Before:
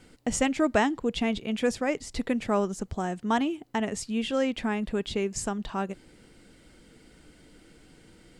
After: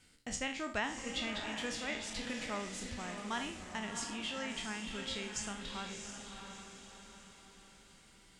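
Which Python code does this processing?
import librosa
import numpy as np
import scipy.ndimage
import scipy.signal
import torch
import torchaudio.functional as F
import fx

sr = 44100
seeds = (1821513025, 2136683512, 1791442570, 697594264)

y = fx.spec_trails(x, sr, decay_s=0.41)
y = fx.tone_stack(y, sr, knobs='5-5-5')
y = fx.env_lowpass_down(y, sr, base_hz=660.0, full_db=-25.0)
y = fx.echo_diffused(y, sr, ms=681, feedback_pct=46, wet_db=-5.5)
y = y * 10.0 ** (1.5 / 20.0)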